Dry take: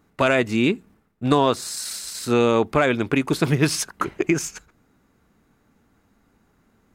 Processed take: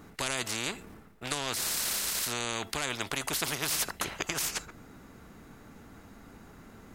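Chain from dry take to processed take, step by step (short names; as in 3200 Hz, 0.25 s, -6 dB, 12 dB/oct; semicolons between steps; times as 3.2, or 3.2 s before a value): resonator 670 Hz, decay 0.22 s, mix 40%; spectral compressor 4:1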